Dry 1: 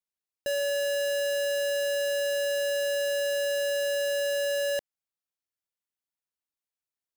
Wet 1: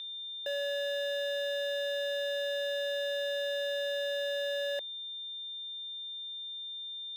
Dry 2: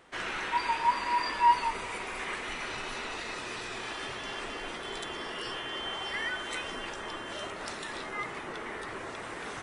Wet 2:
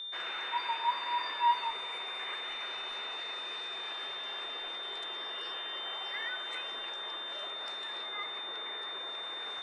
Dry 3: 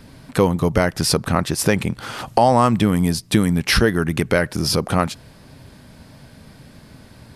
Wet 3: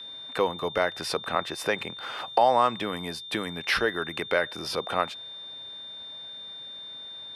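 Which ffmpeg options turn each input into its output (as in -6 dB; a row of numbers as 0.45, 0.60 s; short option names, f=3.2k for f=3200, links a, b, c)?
-filter_complex "[0:a]aeval=exprs='val(0)+0.0316*sin(2*PI*3600*n/s)':c=same,acrossover=split=400 3700:gain=0.112 1 0.224[a][b][c];[a][b][c]amix=inputs=3:normalize=0,bandreject=f=50:t=h:w=6,bandreject=f=100:t=h:w=6,volume=-4.5dB"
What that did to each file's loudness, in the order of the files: -6.0, -2.0, -10.0 LU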